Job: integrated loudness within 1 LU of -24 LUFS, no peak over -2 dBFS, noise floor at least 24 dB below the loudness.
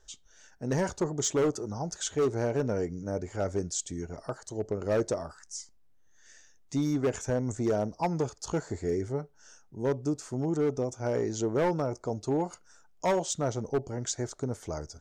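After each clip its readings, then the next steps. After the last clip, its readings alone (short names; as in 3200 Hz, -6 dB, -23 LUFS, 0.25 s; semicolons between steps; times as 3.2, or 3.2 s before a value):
clipped 1.6%; flat tops at -21.5 dBFS; loudness -31.5 LUFS; peak -21.5 dBFS; loudness target -24.0 LUFS
-> clip repair -21.5 dBFS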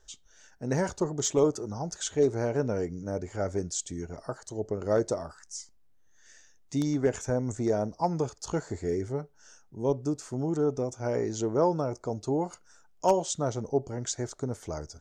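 clipped 0.0%; loudness -30.5 LUFS; peak -12.5 dBFS; loudness target -24.0 LUFS
-> gain +6.5 dB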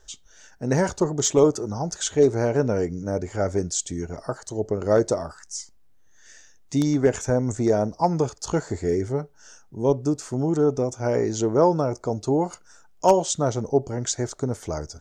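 loudness -24.0 LUFS; peak -6.0 dBFS; noise floor -53 dBFS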